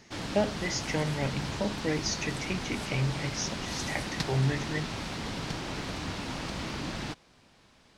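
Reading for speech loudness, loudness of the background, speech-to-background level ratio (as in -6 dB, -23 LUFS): -32.5 LUFS, -35.5 LUFS, 3.0 dB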